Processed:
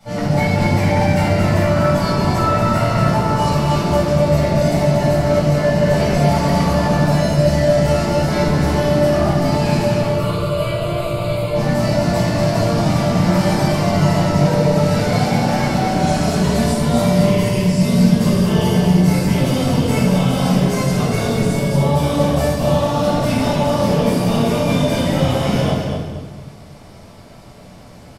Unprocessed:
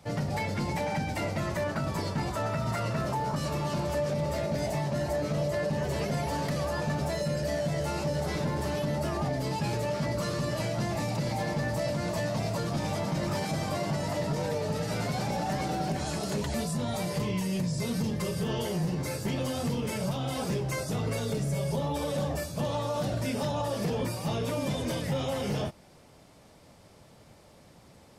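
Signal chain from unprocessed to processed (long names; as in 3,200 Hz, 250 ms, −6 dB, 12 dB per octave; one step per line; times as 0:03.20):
0:09.95–0:11.55: phaser with its sweep stopped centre 1,200 Hz, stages 8
0:21.45–0:22.39: surface crackle 100 per second −47 dBFS
on a send: repeating echo 236 ms, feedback 27%, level −6 dB
on the sum: rectangular room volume 540 cubic metres, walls mixed, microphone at 7.3 metres
level −2 dB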